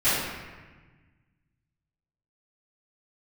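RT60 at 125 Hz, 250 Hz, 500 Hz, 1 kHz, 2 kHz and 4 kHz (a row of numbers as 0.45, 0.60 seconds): 2.3, 1.9, 1.3, 1.3, 1.4, 0.95 seconds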